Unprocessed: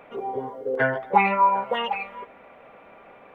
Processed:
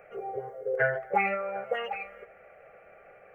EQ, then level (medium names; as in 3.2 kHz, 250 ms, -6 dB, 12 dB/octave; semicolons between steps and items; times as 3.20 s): static phaser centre 980 Hz, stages 6; -2.5 dB